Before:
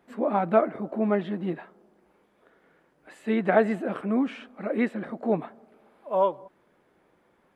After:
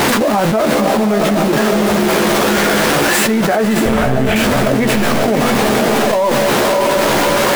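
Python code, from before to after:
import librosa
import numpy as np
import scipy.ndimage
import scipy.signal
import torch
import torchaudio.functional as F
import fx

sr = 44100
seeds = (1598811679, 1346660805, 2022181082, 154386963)

p1 = x + 0.5 * 10.0 ** (-23.0 / 20.0) * np.sign(x)
p2 = fx.low_shelf(p1, sr, hz=120.0, db=-6.0)
p3 = fx.doubler(p2, sr, ms=14.0, db=-6.0)
p4 = fx.level_steps(p3, sr, step_db=22)
p5 = p3 + F.gain(torch.from_numpy(p4), 1.5).numpy()
p6 = fx.lpc_monotone(p5, sr, seeds[0], pitch_hz=130.0, order=10, at=(3.85, 4.36))
p7 = p6 + fx.echo_diffused(p6, sr, ms=603, feedback_pct=46, wet_db=-6.0, dry=0)
p8 = fx.env_flatten(p7, sr, amount_pct=100)
y = F.gain(torch.from_numpy(p8), -4.0).numpy()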